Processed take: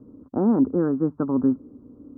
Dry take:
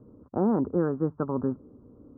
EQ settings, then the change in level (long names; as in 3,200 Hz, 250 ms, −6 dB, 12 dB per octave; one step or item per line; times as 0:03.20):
parametric band 270 Hz +10 dB 0.53 octaves
0.0 dB